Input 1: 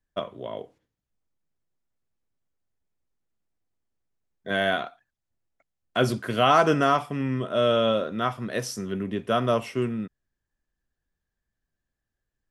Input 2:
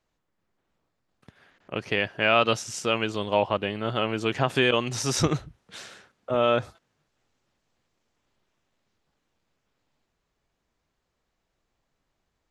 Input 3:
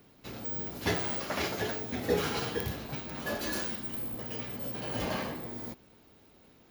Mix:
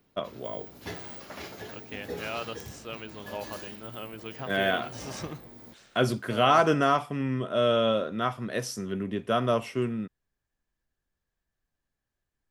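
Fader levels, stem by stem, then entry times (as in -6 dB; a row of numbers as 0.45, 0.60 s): -2.0, -14.5, -8.5 dB; 0.00, 0.00, 0.00 s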